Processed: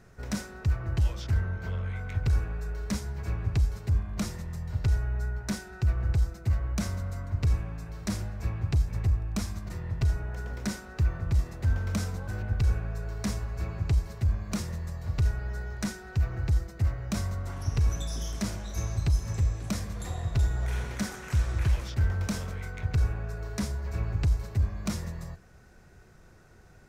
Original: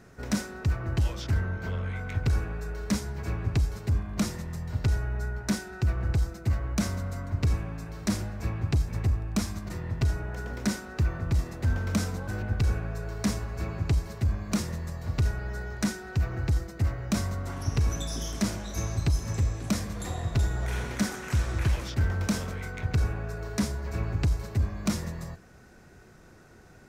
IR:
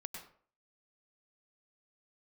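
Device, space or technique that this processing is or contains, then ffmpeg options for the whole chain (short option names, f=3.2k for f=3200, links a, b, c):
low shelf boost with a cut just above: -af "lowshelf=f=85:g=7.5,equalizer=f=270:t=o:w=0.74:g=-4.5,volume=-3.5dB"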